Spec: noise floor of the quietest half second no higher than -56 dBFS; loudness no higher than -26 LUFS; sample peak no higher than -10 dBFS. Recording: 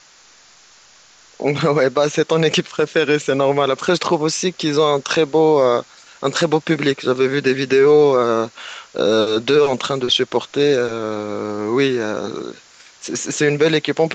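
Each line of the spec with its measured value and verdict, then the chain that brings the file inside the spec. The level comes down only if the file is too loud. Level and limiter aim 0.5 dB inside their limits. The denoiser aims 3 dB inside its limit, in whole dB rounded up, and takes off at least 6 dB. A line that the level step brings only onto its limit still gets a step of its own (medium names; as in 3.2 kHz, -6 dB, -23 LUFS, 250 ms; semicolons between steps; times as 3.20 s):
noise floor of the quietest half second -49 dBFS: fail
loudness -17.5 LUFS: fail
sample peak -4.5 dBFS: fail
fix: trim -9 dB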